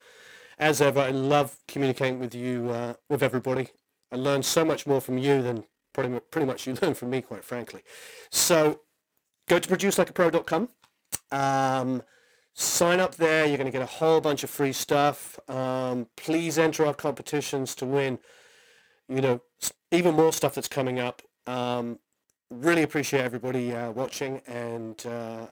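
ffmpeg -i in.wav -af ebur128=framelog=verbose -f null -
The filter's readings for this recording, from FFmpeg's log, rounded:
Integrated loudness:
  I:         -26.3 LUFS
  Threshold: -36.9 LUFS
Loudness range:
  LRA:         3.8 LU
  Threshold: -46.9 LUFS
  LRA low:   -28.7 LUFS
  LRA high:  -24.9 LUFS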